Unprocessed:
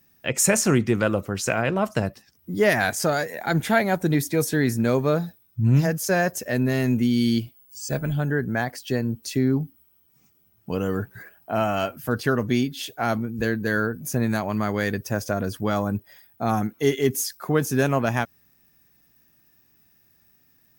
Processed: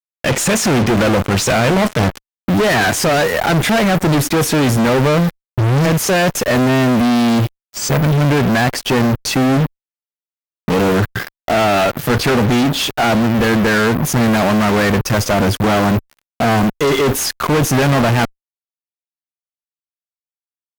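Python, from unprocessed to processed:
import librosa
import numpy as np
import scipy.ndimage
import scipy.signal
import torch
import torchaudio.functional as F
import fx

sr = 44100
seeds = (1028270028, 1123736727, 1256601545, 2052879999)

y = fx.fuzz(x, sr, gain_db=47.0, gate_db=-40.0)
y = fx.cheby_harmonics(y, sr, harmonics=(3,), levels_db=(-14,), full_scale_db=-9.0)
y = fx.high_shelf(y, sr, hz=5700.0, db=-9.0)
y = y * 10.0 ** (4.5 / 20.0)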